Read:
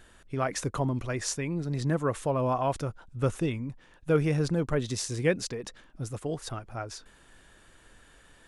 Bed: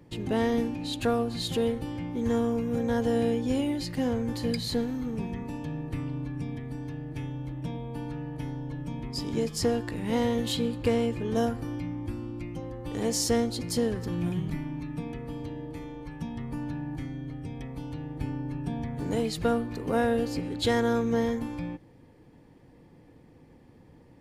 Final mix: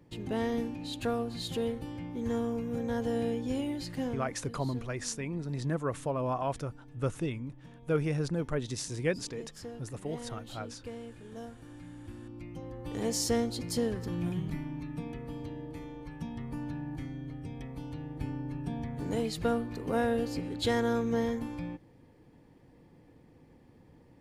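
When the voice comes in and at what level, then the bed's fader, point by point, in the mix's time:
3.80 s, −4.5 dB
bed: 0:04.03 −5.5 dB
0:04.42 −17.5 dB
0:11.47 −17.5 dB
0:12.80 −3.5 dB

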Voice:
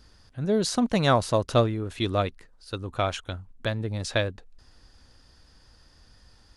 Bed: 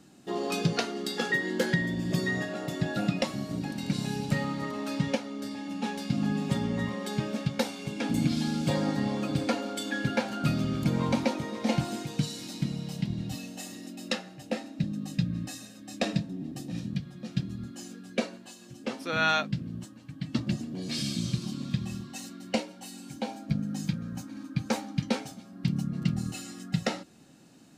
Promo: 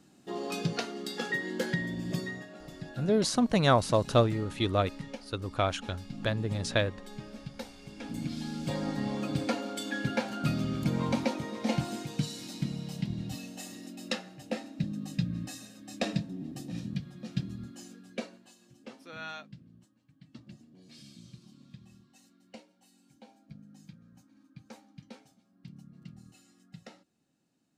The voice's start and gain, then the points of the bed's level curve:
2.60 s, −2.0 dB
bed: 0:02.15 −4.5 dB
0:02.44 −13 dB
0:07.71 −13 dB
0:09.21 −2.5 dB
0:17.48 −2.5 dB
0:19.87 −20.5 dB

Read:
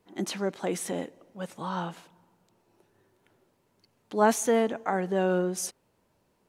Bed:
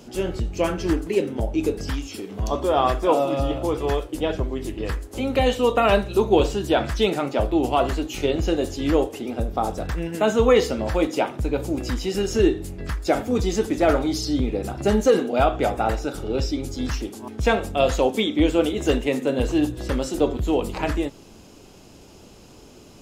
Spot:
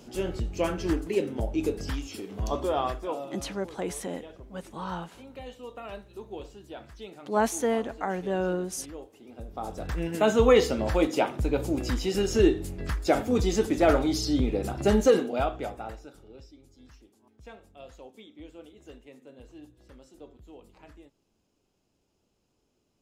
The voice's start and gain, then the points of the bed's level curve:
3.15 s, −2.5 dB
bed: 0:02.61 −5 dB
0:03.60 −22.5 dB
0:09.13 −22.5 dB
0:10.03 −2.5 dB
0:15.08 −2.5 dB
0:16.52 −27.5 dB

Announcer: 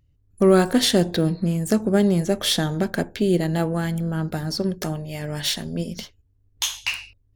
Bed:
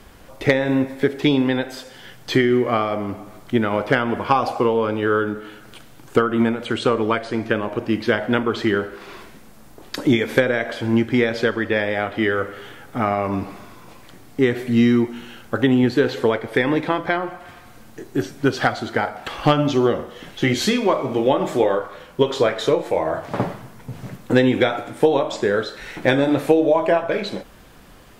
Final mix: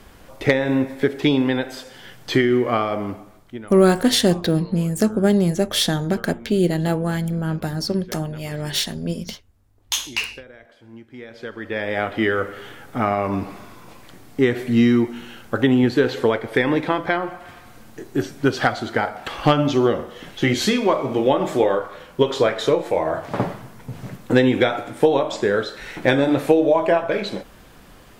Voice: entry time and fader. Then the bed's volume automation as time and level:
3.30 s, +1.5 dB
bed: 0:03.08 −0.5 dB
0:03.88 −24 dB
0:11.06 −24 dB
0:11.98 0 dB

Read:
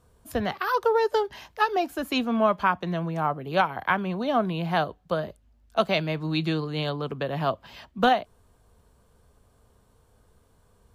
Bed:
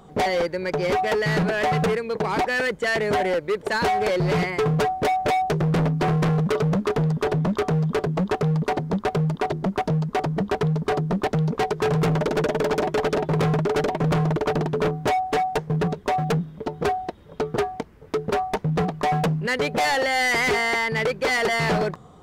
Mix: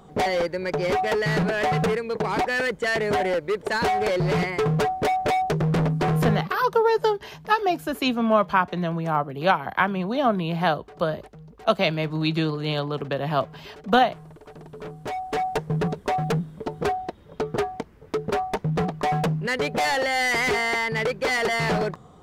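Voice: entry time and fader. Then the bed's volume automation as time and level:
5.90 s, +2.5 dB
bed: 0:06.32 −1 dB
0:06.65 −23.5 dB
0:14.42 −23.5 dB
0:15.47 −1.5 dB

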